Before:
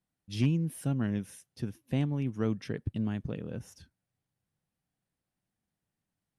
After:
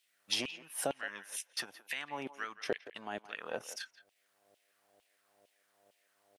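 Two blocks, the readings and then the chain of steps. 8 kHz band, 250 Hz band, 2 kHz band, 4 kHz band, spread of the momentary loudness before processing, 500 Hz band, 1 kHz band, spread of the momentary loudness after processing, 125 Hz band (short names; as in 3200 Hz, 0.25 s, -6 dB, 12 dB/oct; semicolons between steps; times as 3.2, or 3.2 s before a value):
+8.0 dB, -16.5 dB, +7.0 dB, +9.0 dB, 12 LU, -1.0 dB, +5.5 dB, 9 LU, -28.0 dB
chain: compressor 6:1, threshold -40 dBFS, peak gain reduction 17 dB; buzz 100 Hz, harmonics 7, -73 dBFS -8 dB/oct; transient shaper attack +1 dB, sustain -8 dB; LFO high-pass saw down 2.2 Hz 540–3000 Hz; speakerphone echo 0.17 s, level -15 dB; gain +14.5 dB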